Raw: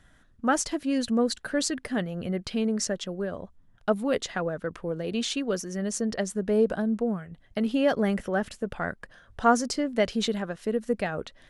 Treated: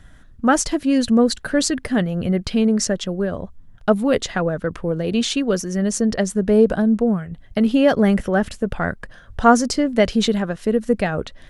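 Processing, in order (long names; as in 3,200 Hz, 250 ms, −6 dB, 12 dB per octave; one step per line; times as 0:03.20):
low-shelf EQ 160 Hz +8.5 dB
level +7 dB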